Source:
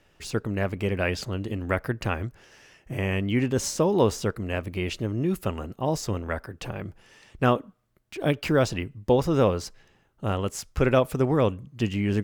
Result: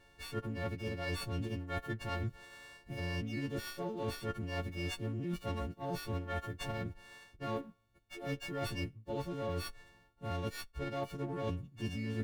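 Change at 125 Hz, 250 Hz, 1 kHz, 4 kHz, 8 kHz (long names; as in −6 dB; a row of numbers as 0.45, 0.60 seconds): −11.5, −13.5, −12.0, −9.0, −16.5 decibels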